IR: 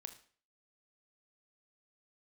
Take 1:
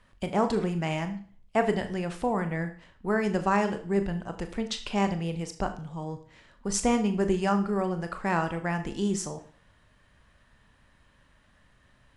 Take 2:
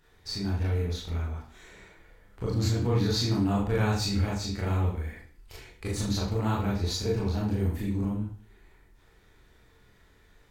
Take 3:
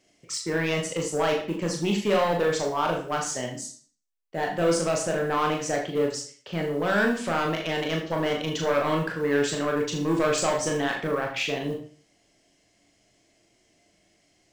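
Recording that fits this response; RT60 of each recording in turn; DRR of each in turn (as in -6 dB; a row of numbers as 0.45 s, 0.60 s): 1; 0.45 s, 0.45 s, 0.45 s; 7.0 dB, -5.5 dB, 0.5 dB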